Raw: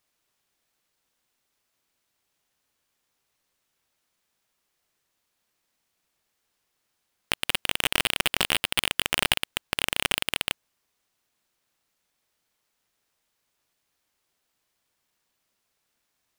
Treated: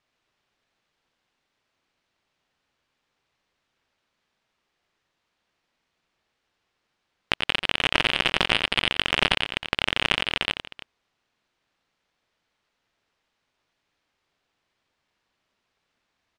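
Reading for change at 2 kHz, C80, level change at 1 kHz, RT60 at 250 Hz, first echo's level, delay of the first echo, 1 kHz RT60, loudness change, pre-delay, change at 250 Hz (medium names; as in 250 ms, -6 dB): +4.0 dB, no reverb, +4.0 dB, no reverb, -8.0 dB, 88 ms, no reverb, +2.5 dB, no reverb, +4.5 dB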